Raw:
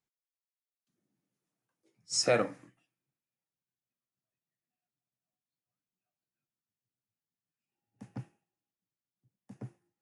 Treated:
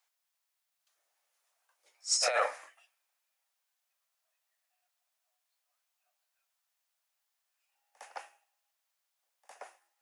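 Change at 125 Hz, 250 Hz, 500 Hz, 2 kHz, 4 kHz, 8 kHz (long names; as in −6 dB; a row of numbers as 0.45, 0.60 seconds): below −40 dB, below −25 dB, −4.0 dB, +2.5 dB, +2.0 dB, +3.0 dB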